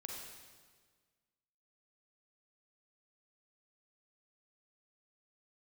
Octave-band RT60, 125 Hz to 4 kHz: 1.8, 1.7, 1.6, 1.5, 1.4, 1.4 seconds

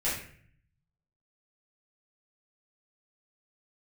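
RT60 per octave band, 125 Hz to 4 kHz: 1.2, 0.80, 0.60, 0.50, 0.60, 0.45 seconds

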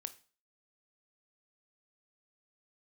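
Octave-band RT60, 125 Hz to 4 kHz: 0.40, 0.40, 0.40, 0.40, 0.35, 0.40 seconds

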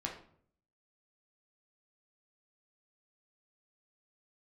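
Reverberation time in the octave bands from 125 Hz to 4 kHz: 0.80, 0.70, 0.65, 0.55, 0.45, 0.40 seconds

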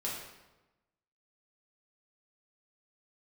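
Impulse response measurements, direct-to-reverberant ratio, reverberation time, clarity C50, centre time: −5.5 dB, 1.1 s, 2.0 dB, 57 ms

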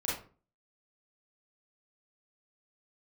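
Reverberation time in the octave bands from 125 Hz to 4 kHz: 0.50, 0.50, 0.45, 0.35, 0.30, 0.25 seconds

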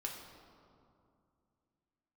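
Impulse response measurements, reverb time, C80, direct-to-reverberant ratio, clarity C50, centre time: 2.5 s, 5.5 dB, −1.0 dB, 4.0 dB, 61 ms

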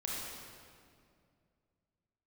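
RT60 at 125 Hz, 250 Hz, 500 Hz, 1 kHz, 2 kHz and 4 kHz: 3.1, 2.8, 2.5, 2.1, 1.8, 1.6 seconds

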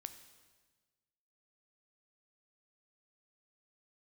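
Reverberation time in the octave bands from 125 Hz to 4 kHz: 1.7, 1.5, 1.5, 1.3, 1.3, 1.3 seconds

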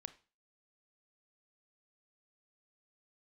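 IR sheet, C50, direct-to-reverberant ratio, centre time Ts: 16.0 dB, 11.5 dB, 4 ms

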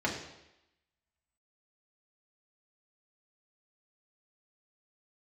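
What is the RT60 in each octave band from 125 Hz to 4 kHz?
0.80, 0.85, 0.90, 0.90, 0.90, 0.90 seconds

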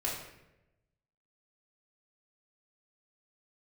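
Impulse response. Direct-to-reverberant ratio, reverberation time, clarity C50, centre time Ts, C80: −5.5 dB, 0.95 s, 3.0 dB, 49 ms, 6.0 dB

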